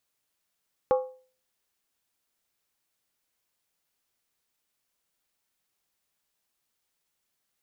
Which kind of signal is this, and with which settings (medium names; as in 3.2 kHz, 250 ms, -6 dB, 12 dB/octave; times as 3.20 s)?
skin hit, lowest mode 514 Hz, decay 0.42 s, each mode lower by 7 dB, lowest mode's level -16.5 dB